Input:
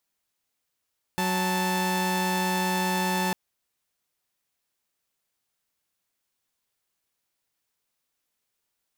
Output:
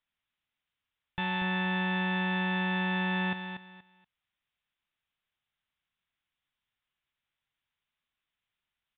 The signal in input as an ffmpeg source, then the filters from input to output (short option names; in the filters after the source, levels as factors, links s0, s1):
-f lavfi -i "aevalsrc='0.0631*((2*mod(185*t,1)-1)+(2*mod(880*t,1)-1))':d=2.15:s=44100"
-filter_complex "[0:a]equalizer=f=440:t=o:w=2.1:g=-12,asplit=2[s0][s1];[s1]aecho=0:1:238|476|714:0.376|0.0902|0.0216[s2];[s0][s2]amix=inputs=2:normalize=0,aresample=8000,aresample=44100"